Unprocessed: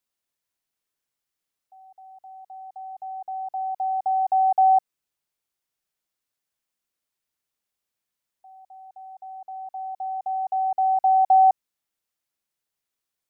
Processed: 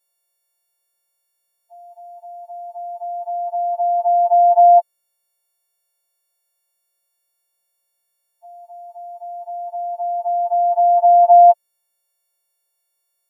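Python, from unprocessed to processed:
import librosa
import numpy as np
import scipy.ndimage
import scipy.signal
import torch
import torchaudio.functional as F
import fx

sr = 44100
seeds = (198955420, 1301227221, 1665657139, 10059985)

y = fx.freq_snap(x, sr, grid_st=4)
y = fx.peak_eq(y, sr, hz=610.0, db=13.5, octaves=0.77)
y = y * 10.0 ** (-2.0 / 20.0)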